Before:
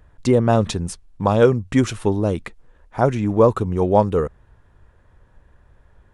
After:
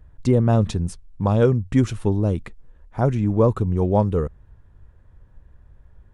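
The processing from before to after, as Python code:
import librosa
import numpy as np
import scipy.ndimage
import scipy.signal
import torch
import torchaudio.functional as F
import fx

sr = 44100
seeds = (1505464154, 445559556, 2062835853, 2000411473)

y = fx.low_shelf(x, sr, hz=250.0, db=11.5)
y = y * librosa.db_to_amplitude(-7.0)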